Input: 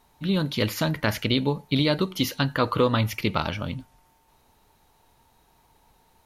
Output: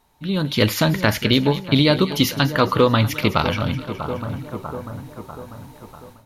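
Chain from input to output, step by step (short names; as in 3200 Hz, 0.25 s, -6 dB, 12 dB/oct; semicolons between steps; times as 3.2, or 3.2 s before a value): split-band echo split 1400 Hz, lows 0.644 s, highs 0.21 s, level -13 dB; AGC gain up to 14 dB; gain -1 dB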